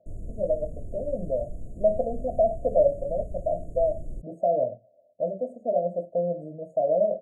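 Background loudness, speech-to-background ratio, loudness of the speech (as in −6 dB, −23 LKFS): −42.5 LKFS, 15.0 dB, −27.5 LKFS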